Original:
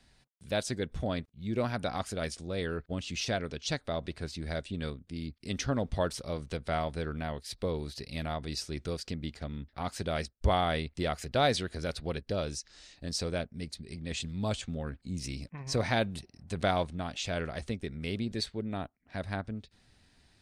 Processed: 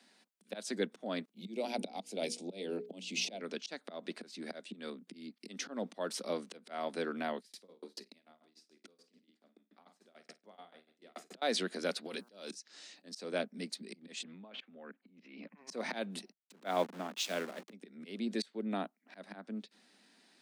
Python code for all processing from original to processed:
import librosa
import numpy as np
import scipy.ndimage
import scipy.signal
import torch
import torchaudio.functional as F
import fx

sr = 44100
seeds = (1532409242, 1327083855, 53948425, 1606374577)

y = fx.chain(x, sr, fx.band_shelf(hz=1400.0, db=-15.5, octaves=1.0),
    fx.hum_notches(base_hz=60, count=8),
    fx.band_squash(depth_pct=40), at=(1.36, 3.41))
y = fx.chain(y, sr, fx.room_flutter(wall_m=8.8, rt60_s=0.48),
    fx.tremolo_decay(direction='decaying', hz=6.9, depth_db=39), at=(7.39, 11.42))
y = fx.over_compress(y, sr, threshold_db=-40.0, ratio=-1.0, at=(12.05, 12.53), fade=0.02)
y = fx.high_shelf(y, sr, hz=3000.0, db=11.5, at=(12.05, 12.53), fade=0.02)
y = fx.dmg_buzz(y, sr, base_hz=120.0, harmonics=13, level_db=-68.0, tilt_db=-1, odd_only=False, at=(12.05, 12.53), fade=0.02)
y = fx.chain(y, sr, fx.lowpass(hz=2700.0, slope=24),
    fx.low_shelf(hz=370.0, db=-6.5),
    fx.over_compress(threshold_db=-46.0, ratio=-1.0), at=(14.23, 15.53))
y = fx.chain(y, sr, fx.delta_hold(step_db=-39.0),
    fx.high_shelf(hz=9900.0, db=-7.0),
    fx.band_widen(depth_pct=100), at=(16.32, 17.73))
y = fx.auto_swell(y, sr, attack_ms=258.0)
y = scipy.signal.sosfilt(scipy.signal.butter(12, 190.0, 'highpass', fs=sr, output='sos'), y)
y = F.gain(torch.from_numpy(y), 1.0).numpy()